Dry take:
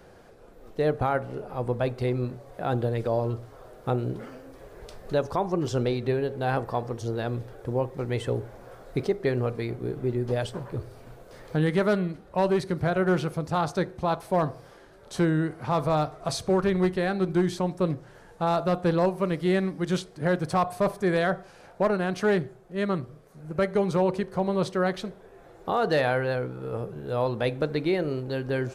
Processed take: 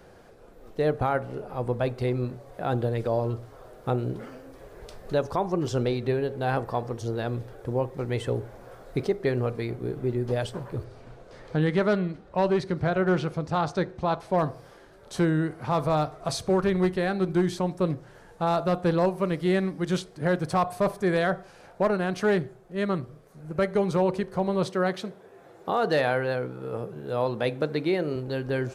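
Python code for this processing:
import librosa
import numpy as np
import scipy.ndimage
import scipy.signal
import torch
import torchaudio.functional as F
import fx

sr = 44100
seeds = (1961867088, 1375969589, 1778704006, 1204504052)

y = fx.lowpass(x, sr, hz=6500.0, slope=12, at=(10.84, 14.38))
y = fx.highpass(y, sr, hz=120.0, slope=12, at=(24.66, 28.16))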